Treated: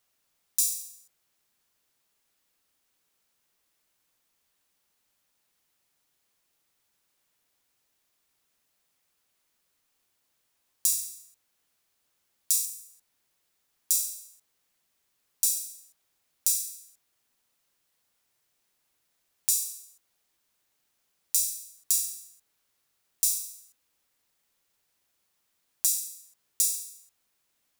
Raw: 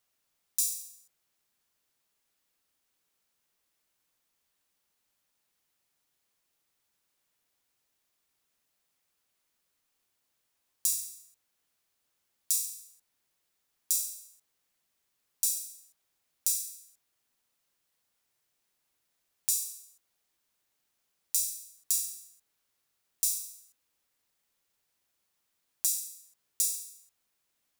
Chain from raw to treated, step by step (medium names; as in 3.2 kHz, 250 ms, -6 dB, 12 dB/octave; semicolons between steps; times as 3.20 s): 12.65–13.91 s: dynamic bell 4 kHz, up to -5 dB, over -60 dBFS, Q 1.1; trim +3.5 dB